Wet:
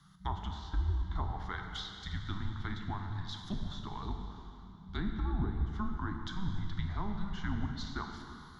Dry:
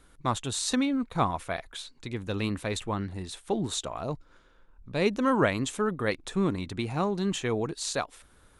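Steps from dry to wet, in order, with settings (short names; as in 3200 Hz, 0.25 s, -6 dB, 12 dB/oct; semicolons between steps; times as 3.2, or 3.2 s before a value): high shelf 2200 Hz +6 dB; fixed phaser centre 2700 Hz, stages 6; in parallel at -2 dB: limiter -24 dBFS, peak gain reduction 10.5 dB; on the sum: frequency shift -200 Hz; treble ducked by the level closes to 470 Hz, closed at -20 dBFS; plate-style reverb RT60 3 s, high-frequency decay 0.9×, DRR 3 dB; gain -8.5 dB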